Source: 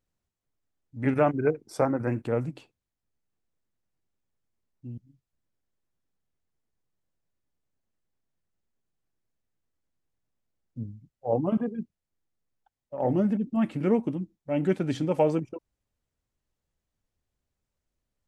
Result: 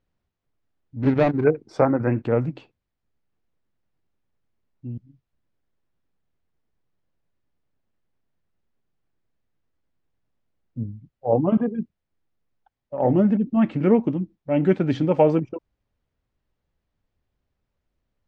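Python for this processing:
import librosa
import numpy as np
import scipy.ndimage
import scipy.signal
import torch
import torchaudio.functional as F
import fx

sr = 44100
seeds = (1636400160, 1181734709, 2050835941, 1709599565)

y = fx.median_filter(x, sr, points=41, at=(1.01, 1.44))
y = fx.air_absorb(y, sr, metres=180.0)
y = y * 10.0 ** (6.5 / 20.0)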